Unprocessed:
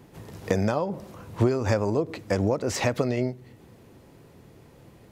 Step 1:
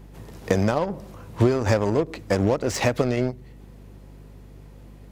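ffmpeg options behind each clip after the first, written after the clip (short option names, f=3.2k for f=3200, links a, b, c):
-filter_complex "[0:a]asplit=2[a][b];[b]acrusher=bits=3:mix=0:aa=0.5,volume=-7.5dB[c];[a][c]amix=inputs=2:normalize=0,aeval=exprs='val(0)+0.00631*(sin(2*PI*50*n/s)+sin(2*PI*2*50*n/s)/2+sin(2*PI*3*50*n/s)/3+sin(2*PI*4*50*n/s)/4+sin(2*PI*5*50*n/s)/5)':c=same"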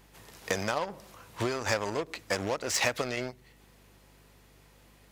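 -af "tiltshelf=f=660:g=-9,volume=-7.5dB"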